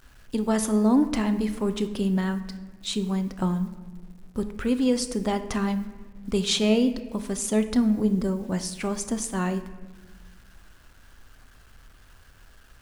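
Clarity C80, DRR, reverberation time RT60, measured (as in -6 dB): 14.0 dB, 9.0 dB, 1.3 s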